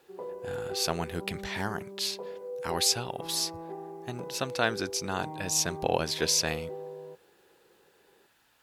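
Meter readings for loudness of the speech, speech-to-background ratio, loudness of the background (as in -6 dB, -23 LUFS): -30.0 LUFS, 11.0 dB, -41.0 LUFS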